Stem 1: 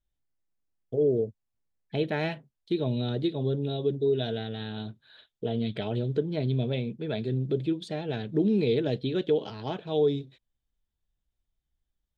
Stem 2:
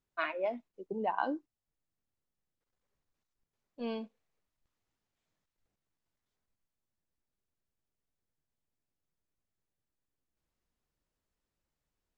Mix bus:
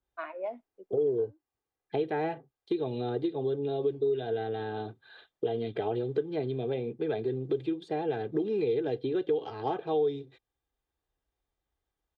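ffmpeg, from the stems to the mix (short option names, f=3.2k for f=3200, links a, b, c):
-filter_complex "[0:a]highpass=44,aecho=1:1:2.5:0.63,adynamicequalizer=threshold=0.00501:dfrequency=2200:dqfactor=0.7:tfrequency=2200:tqfactor=0.7:attack=5:release=100:ratio=0.375:range=2.5:mode=cutabove:tftype=highshelf,volume=-6dB,asplit=2[a][b];[1:a]volume=-13.5dB[c];[b]apad=whole_len=536816[d];[c][d]sidechaincompress=threshold=-46dB:ratio=16:attack=16:release=525[e];[a][e]amix=inputs=2:normalize=0,acrossover=split=120|1400[f][g][h];[f]acompressor=threshold=-53dB:ratio=4[i];[g]acompressor=threshold=-38dB:ratio=4[j];[h]acompressor=threshold=-54dB:ratio=4[k];[i][j][k]amix=inputs=3:normalize=0,equalizer=f=710:w=0.32:g=12"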